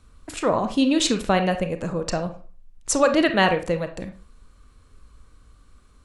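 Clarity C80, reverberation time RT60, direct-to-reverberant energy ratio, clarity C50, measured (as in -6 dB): 16.5 dB, 0.40 s, 7.5 dB, 11.0 dB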